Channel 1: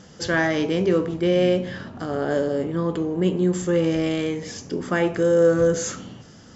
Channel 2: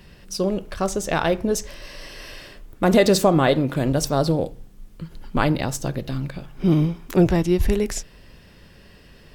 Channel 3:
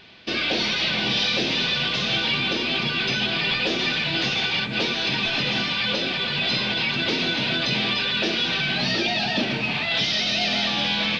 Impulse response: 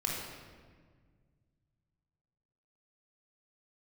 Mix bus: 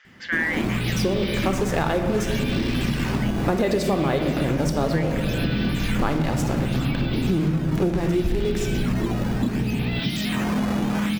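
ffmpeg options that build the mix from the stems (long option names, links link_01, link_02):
-filter_complex "[0:a]highpass=frequency=2000:width_type=q:width=4.2,lowpass=3400,volume=-1.5dB[link_01];[1:a]aeval=exprs='val(0)+0.0282*(sin(2*PI*60*n/s)+sin(2*PI*2*60*n/s)/2+sin(2*PI*3*60*n/s)/3+sin(2*PI*4*60*n/s)/4+sin(2*PI*5*60*n/s)/5)':channel_layout=same,acrusher=bits=4:mix=0:aa=0.5,adelay=650,volume=2.5dB,asplit=2[link_02][link_03];[link_03]volume=-6.5dB[link_04];[2:a]lowshelf=frequency=380:width_type=q:width=1.5:gain=11.5,dynaudnorm=framelen=250:gausssize=3:maxgain=11.5dB,acrusher=samples=8:mix=1:aa=0.000001:lfo=1:lforange=12.8:lforate=0.68,adelay=50,volume=-8.5dB[link_05];[3:a]atrim=start_sample=2205[link_06];[link_04][link_06]afir=irnorm=-1:irlink=0[link_07];[link_01][link_02][link_05][link_07]amix=inputs=4:normalize=0,highshelf=frequency=3900:gain=-7.5,acompressor=threshold=-19dB:ratio=6"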